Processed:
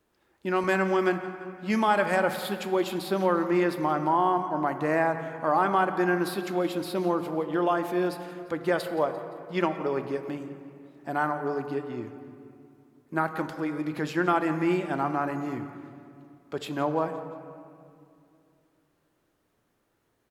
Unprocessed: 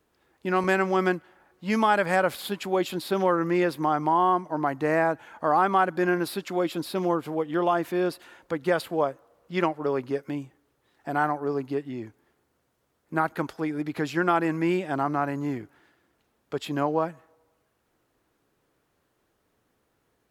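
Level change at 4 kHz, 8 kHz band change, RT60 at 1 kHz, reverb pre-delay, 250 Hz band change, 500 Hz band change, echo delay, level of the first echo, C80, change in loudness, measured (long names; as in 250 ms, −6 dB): −1.5 dB, −1.5 dB, 2.3 s, 3 ms, −0.5 dB, −1.0 dB, 173 ms, −17.5 dB, 10.0 dB, −1.5 dB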